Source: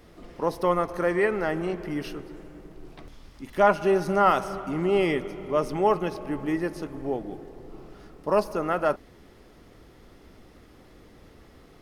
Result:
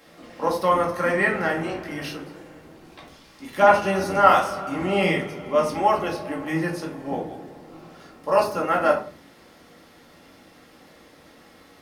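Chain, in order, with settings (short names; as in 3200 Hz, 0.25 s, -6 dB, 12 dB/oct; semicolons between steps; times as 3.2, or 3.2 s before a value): octaver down 1 oct, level +1 dB; HPF 890 Hz 6 dB/oct; shoebox room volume 280 m³, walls furnished, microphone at 2.2 m; gain +4 dB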